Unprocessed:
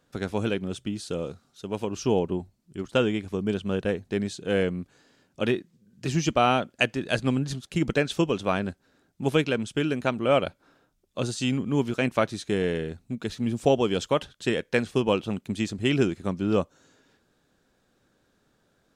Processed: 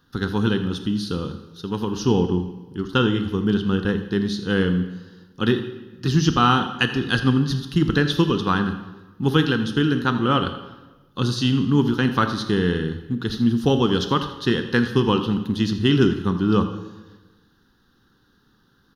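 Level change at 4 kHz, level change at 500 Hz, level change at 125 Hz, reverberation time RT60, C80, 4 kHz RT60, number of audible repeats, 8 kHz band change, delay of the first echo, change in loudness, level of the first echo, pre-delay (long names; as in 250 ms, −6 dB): +7.5 dB, +1.0 dB, +8.5 dB, 1.2 s, 10.5 dB, 0.95 s, 1, +0.5 dB, 82 ms, +5.5 dB, −15.0 dB, 18 ms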